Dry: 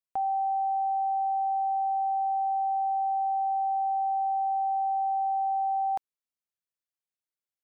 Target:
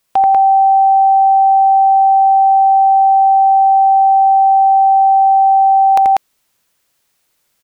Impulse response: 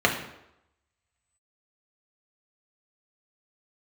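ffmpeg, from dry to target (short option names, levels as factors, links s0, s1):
-af "aecho=1:1:84.55|192.4:0.708|0.708,apsyclip=47.3,volume=0.473"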